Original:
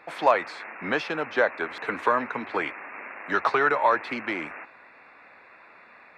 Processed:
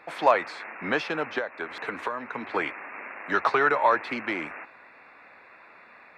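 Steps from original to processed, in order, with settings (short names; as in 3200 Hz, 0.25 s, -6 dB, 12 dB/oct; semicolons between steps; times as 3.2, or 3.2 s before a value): 1.38–2.5 compressor 6:1, threshold -28 dBFS, peak gain reduction 11.5 dB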